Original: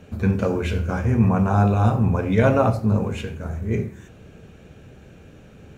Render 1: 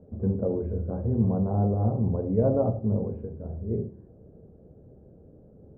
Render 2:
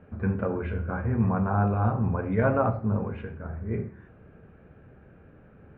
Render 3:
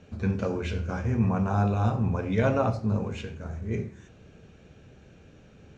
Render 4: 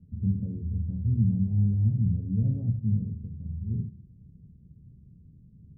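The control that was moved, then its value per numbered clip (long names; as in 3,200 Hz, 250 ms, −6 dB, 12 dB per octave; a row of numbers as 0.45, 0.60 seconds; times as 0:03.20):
transistor ladder low-pass, frequency: 690, 2,000, 7,400, 210 Hertz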